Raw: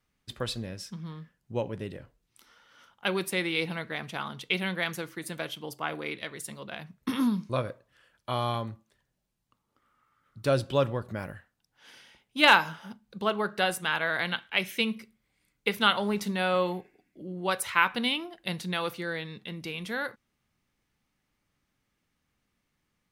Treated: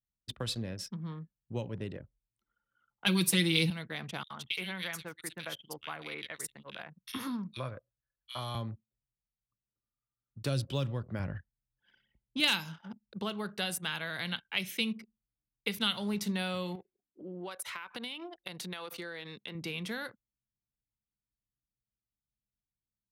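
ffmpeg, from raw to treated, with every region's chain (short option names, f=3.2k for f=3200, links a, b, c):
-filter_complex "[0:a]asettb=1/sr,asplit=3[a][b][c];[a]atrim=end=3.064[d];[b]atrim=start=3.06:end=3.7,asetpts=PTS-STARTPTS,afade=t=in:d=0.004:c=qsin,afade=t=out:st=0.636:d=0.004:c=qsin,aecho=1:1:6.1:1,atrim=end_sample=28224,acontrast=40[e];[c]atrim=start=3.696[f];[d][e]acrossfade=d=0.004:c1=hsin:c2=qsin[g];[g][f]acrossfade=d=0.004:c1=qsin:c2=hsin,asettb=1/sr,asplit=3[h][i][j];[h]atrim=end=4.234[k];[i]atrim=start=4.23:end=8.55,asetpts=PTS-STARTPTS,afade=t=in:d=0.004:c=qsin,afade=t=out:st=4.316:d=0.004:c=qsin,equalizer=f=250:w=0.41:g=-8.5,acrossover=split=2400[l][m];[l]adelay=70[n];[n][m]amix=inputs=2:normalize=0,atrim=end_sample=190512[o];[j]atrim=start=8.546[p];[k][o]acrossfade=d=0.004:c1=hsin:c2=qsin[q];[q][p]acrossfade=d=0.004:c1=qsin:c2=hsin,asettb=1/sr,asplit=3[r][s][t];[r]atrim=end=11.194[u];[s]atrim=start=11.19:end=12.4,asetpts=PTS-STARTPTS,afade=t=in:d=0.004:c=qsin,afade=t=out:st=1.206:d=0.004:c=qsin,lowpass=5.7k,lowshelf=f=140:g=11[v];[t]atrim=start=12.396[w];[u][v]acrossfade=d=0.004:c1=hsin:c2=qsin[x];[x][w]acrossfade=d=0.004:c1=qsin:c2=hsin,asettb=1/sr,asplit=3[y][z][aa];[y]atrim=end=16.754[ab];[z]atrim=start=16.75:end=19.55,asetpts=PTS-STARTPTS,afade=t=in:d=0.004:c=qsin,afade=t=out:st=2.796:d=0.004:c=qsin,bass=f=250:g=-9,treble=f=4k:g=4,acompressor=threshold=-36dB:ratio=8:attack=3.2:release=140:knee=1:detection=peak[ac];[aa]atrim=start=19.546[ad];[ab][ac]acrossfade=d=0.004:c1=hsin:c2=qsin[ae];[ae][ad]acrossfade=d=0.004:c1=qsin:c2=hsin,anlmdn=0.0251,highpass=57,acrossover=split=220|3000[af][ag][ah];[ag]acompressor=threshold=-38dB:ratio=5[ai];[af][ai][ah]amix=inputs=3:normalize=0"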